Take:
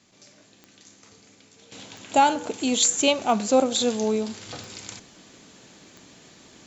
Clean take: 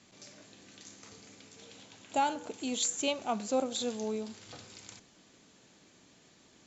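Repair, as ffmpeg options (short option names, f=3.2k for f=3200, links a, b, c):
-af "adeclick=t=4,agate=range=-21dB:threshold=-47dB,asetnsamples=n=441:p=0,asendcmd='1.72 volume volume -11dB',volume=0dB"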